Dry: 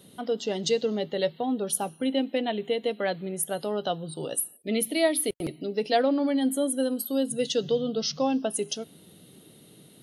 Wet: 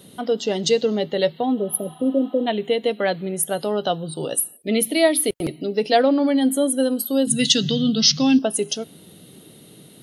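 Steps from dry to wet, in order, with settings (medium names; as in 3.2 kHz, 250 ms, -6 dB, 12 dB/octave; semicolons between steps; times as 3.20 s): 1.60–2.44 s: spectral replace 670–9900 Hz before; 7.27–8.39 s: ten-band graphic EQ 125 Hz +8 dB, 250 Hz +6 dB, 500 Hz -10 dB, 1 kHz -6 dB, 2 kHz +8 dB, 4 kHz +6 dB, 8 kHz +8 dB; trim +6.5 dB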